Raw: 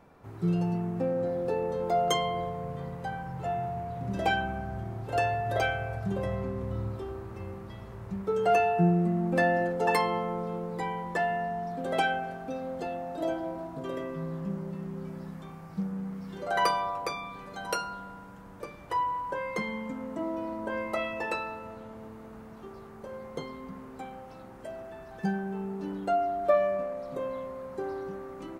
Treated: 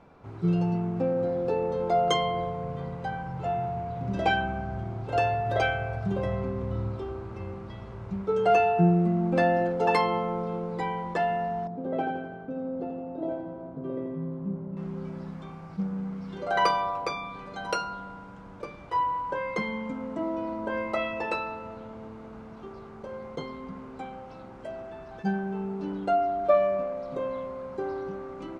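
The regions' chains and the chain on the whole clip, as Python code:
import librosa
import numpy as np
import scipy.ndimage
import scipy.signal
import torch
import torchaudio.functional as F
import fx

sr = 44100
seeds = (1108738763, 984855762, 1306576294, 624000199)

y = fx.chain(x, sr, fx.bandpass_q(hz=220.0, q=0.61),
    fx.echo_feedback(ms=84, feedback_pct=56, wet_db=-6.5), at=(11.67, 14.77))
y = scipy.signal.sosfilt(scipy.signal.butter(2, 5300.0, 'lowpass', fs=sr, output='sos'), y)
y = fx.notch(y, sr, hz=1800.0, q=12.0)
y = fx.attack_slew(y, sr, db_per_s=470.0)
y = y * 10.0 ** (2.5 / 20.0)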